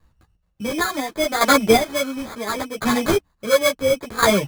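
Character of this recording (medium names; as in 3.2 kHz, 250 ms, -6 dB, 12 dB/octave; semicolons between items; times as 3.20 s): aliases and images of a low sample rate 2.8 kHz, jitter 0%; chopped level 0.71 Hz, depth 65%, duty 25%; a shimmering, thickened sound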